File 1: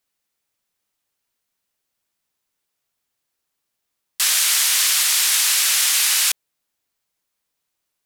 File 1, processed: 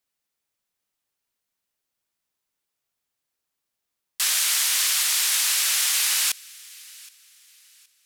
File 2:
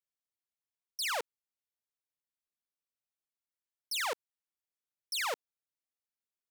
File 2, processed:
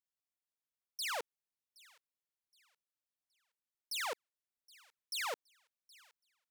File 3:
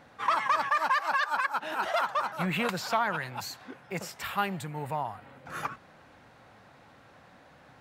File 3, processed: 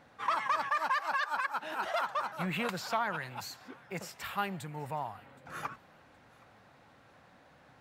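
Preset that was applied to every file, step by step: thin delay 0.77 s, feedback 32%, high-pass 1500 Hz, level -22.5 dB; gain -4.5 dB

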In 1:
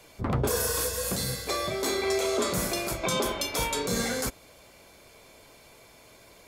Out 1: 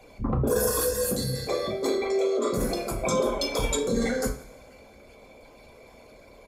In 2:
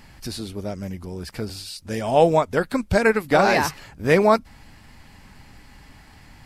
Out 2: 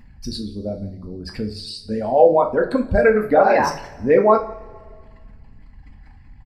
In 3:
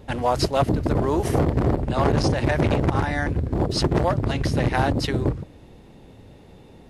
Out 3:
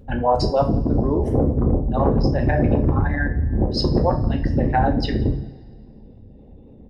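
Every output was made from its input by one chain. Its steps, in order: formant sharpening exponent 2; echo 0.173 s -23.5 dB; two-slope reverb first 0.34 s, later 1.9 s, from -22 dB, DRR 1.5 dB; gain +1 dB

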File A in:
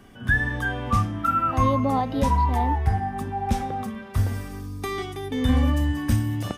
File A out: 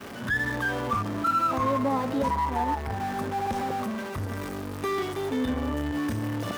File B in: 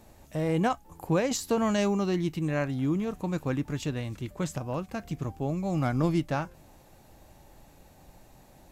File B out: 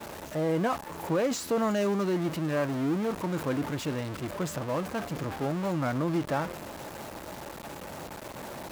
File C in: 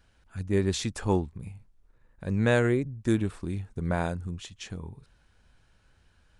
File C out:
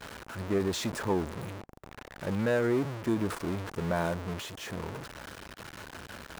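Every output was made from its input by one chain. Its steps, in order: zero-crossing step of -26 dBFS; notch 760 Hz, Q 12; in parallel at -2.5 dB: level quantiser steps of 20 dB; on the sum: dynamic EQ 2500 Hz, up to -3 dB, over -36 dBFS, Q 0.87; expander -26 dBFS; soft clip -8.5 dBFS; limiter -15.5 dBFS; HPF 340 Hz 6 dB/oct; high shelf 3200 Hz -11 dB; reverse; upward compressor, threshold -42 dBFS; reverse

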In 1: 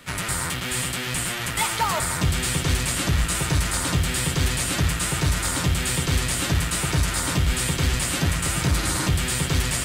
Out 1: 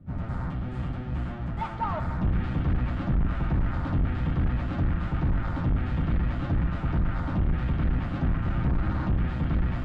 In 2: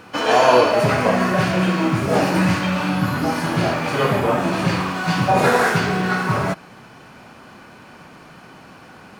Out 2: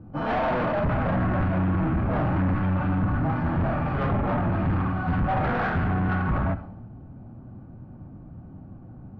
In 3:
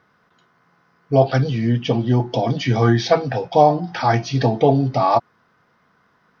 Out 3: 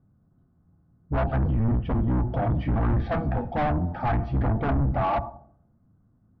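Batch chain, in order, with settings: octaver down 1 oct, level +1 dB; bell 2100 Hz -5 dB 1.2 oct; notch 990 Hz, Q 10; plate-style reverb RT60 0.77 s, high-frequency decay 0.75×, DRR 15.5 dB; hard clip -17 dBFS; in parallel at -1 dB: limiter -25.5 dBFS; on the sum: low-pass opened by the level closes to 320 Hz, open at -8.5 dBFS; bell 440 Hz -11.5 dB 0.6 oct; treble ducked by the level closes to 430 Hz, closed at -11 dBFS; soft clip -14.5 dBFS; gain -3 dB

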